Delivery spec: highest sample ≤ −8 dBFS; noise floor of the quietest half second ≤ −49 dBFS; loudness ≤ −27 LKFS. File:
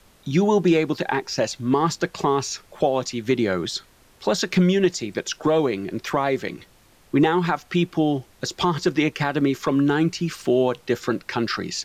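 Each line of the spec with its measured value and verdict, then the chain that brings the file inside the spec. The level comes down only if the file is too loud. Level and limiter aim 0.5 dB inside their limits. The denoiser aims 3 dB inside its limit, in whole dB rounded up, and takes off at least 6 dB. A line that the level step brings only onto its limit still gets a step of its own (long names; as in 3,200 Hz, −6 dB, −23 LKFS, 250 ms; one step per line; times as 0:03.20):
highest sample −9.0 dBFS: in spec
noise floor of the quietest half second −54 dBFS: in spec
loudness −22.5 LKFS: out of spec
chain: level −5 dB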